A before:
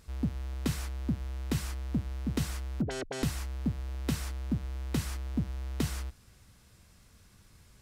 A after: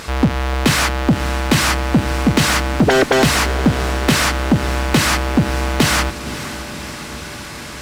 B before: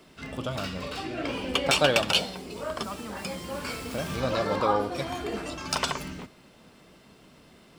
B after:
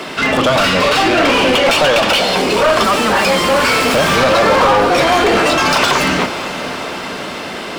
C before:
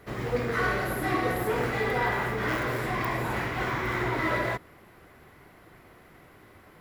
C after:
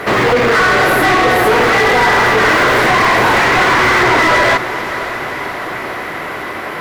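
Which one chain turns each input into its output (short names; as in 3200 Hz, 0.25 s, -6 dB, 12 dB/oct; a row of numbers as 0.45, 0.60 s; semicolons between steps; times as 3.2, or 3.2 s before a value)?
compressor, threshold -28 dBFS; overdrive pedal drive 29 dB, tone 2800 Hz, clips at -14.5 dBFS; diffused feedback echo 0.541 s, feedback 66%, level -13.5 dB; normalise peaks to -3 dBFS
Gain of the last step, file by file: +12.5, +11.0, +11.0 dB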